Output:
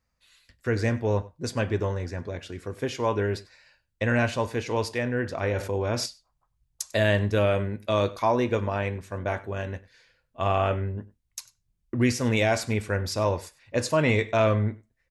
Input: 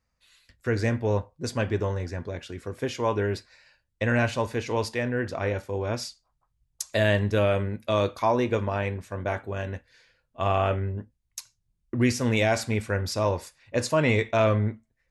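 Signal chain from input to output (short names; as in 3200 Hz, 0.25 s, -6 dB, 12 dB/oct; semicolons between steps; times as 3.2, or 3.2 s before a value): echo 97 ms -21 dB; 5.43–6.06 fast leveller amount 50%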